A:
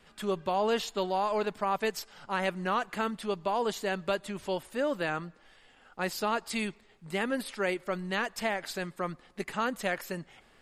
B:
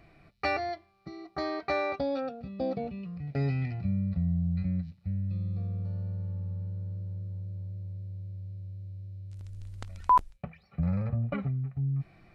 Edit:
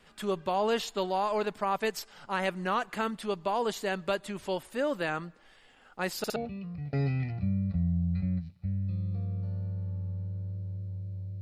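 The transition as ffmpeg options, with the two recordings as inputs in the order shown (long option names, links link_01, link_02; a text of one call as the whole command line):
ffmpeg -i cue0.wav -i cue1.wav -filter_complex "[0:a]apad=whole_dur=11.41,atrim=end=11.41,asplit=3[link_01][link_02][link_03];[link_01]atrim=end=6.242[link_04];[link_02]atrim=start=6.178:end=6.242[link_05];[link_03]atrim=start=6.178:end=6.242[link_06];[1:a]atrim=start=2.778:end=7.83[link_07];[link_04][link_05]acrossfade=duration=0.004:curve1=hsin:curve2=hsin[link_08];[link_08][link_06]acrossfade=duration=0.004:curve1=hsin:curve2=hsin[link_09];[link_09][link_07]acrossfade=duration=0.004:curve1=hsin:curve2=hsin" out.wav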